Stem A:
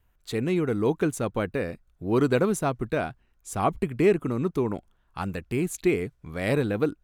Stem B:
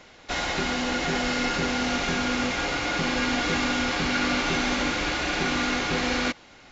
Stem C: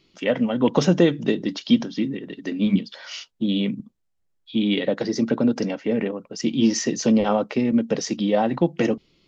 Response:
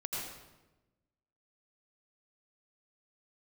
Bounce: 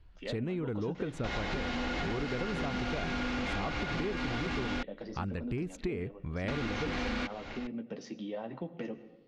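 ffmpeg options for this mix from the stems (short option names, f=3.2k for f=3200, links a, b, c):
-filter_complex "[0:a]volume=1.5dB[a];[1:a]aeval=exprs='0.251*sin(PI/2*2.51*val(0)/0.251)':c=same,adelay=950,volume=-5.5dB,asplit=3[b][c][d];[b]atrim=end=4.83,asetpts=PTS-STARTPTS,afade=t=out:st=4.826:d=0.004:c=hsin[e];[c]atrim=start=4.83:end=6.48,asetpts=PTS-STARTPTS,volume=0[f];[d]atrim=start=6.48,asetpts=PTS-STARTPTS,afade=t=in:d=0.004:c=hsin[g];[e][f][g]concat=n=3:v=0:a=1[h];[2:a]flanger=delay=9.8:depth=3.2:regen=-41:speed=1.4:shape=sinusoidal,volume=-12.5dB,asplit=2[i][j];[j]volume=-16dB[k];[a][h]amix=inputs=2:normalize=0,lowshelf=f=110:g=10,acompressor=threshold=-22dB:ratio=3,volume=0dB[l];[3:a]atrim=start_sample=2205[m];[k][m]afir=irnorm=-1:irlink=0[n];[i][l][n]amix=inputs=3:normalize=0,lowpass=4k,acompressor=threshold=-36dB:ratio=2.5"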